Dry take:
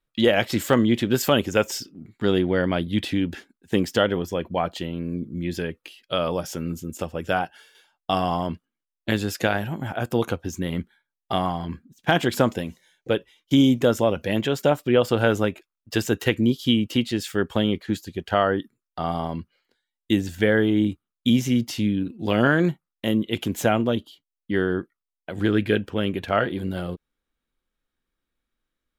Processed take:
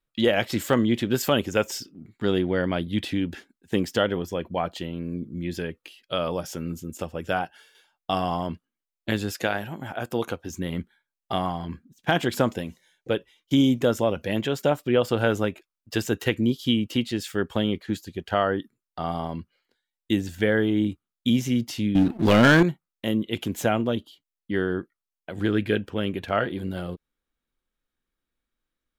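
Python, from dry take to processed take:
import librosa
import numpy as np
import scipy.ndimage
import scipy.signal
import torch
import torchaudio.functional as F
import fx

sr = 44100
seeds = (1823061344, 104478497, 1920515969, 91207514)

y = fx.low_shelf(x, sr, hz=180.0, db=-7.5, at=(9.31, 10.5))
y = fx.leveller(y, sr, passes=3, at=(21.95, 22.63))
y = y * librosa.db_to_amplitude(-2.5)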